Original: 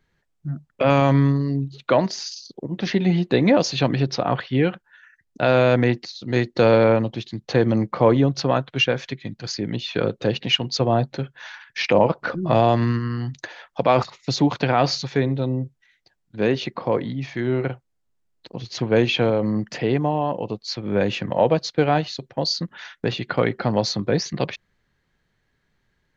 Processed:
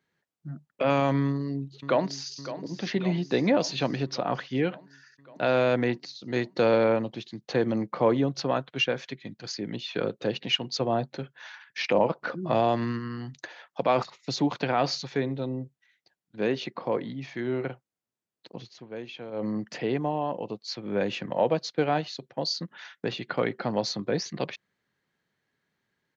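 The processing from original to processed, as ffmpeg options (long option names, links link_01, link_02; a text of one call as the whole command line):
ffmpeg -i in.wav -filter_complex "[0:a]asplit=2[link_01][link_02];[link_02]afade=type=in:start_time=1.26:duration=0.01,afade=type=out:start_time=2.36:duration=0.01,aecho=0:1:560|1120|1680|2240|2800|3360|3920|4480|5040:0.237137|0.165996|0.116197|0.0813381|0.0569367|0.0398557|0.027899|0.0195293|0.0136705[link_03];[link_01][link_03]amix=inputs=2:normalize=0,asplit=3[link_04][link_05][link_06];[link_04]atrim=end=18.74,asetpts=PTS-STARTPTS,afade=type=out:start_time=18.61:duration=0.13:silence=0.199526[link_07];[link_05]atrim=start=18.74:end=19.31,asetpts=PTS-STARTPTS,volume=-14dB[link_08];[link_06]atrim=start=19.31,asetpts=PTS-STARTPTS,afade=type=in:duration=0.13:silence=0.199526[link_09];[link_07][link_08][link_09]concat=n=3:v=0:a=1,highpass=160,volume=-6dB" out.wav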